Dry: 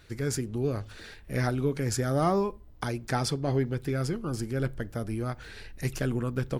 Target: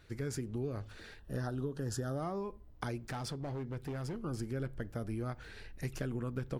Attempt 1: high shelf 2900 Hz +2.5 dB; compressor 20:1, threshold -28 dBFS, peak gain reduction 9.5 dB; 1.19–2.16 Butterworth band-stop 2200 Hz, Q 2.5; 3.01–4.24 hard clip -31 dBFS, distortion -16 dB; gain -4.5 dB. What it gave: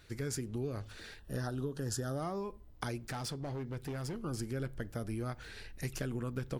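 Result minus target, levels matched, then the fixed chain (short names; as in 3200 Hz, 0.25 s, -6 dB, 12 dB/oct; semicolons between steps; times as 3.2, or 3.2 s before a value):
8000 Hz band +4.5 dB
high shelf 2900 Hz -4.5 dB; compressor 20:1, threshold -28 dBFS, peak gain reduction 9 dB; 1.19–2.16 Butterworth band-stop 2200 Hz, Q 2.5; 3.01–4.24 hard clip -31 dBFS, distortion -16 dB; gain -4.5 dB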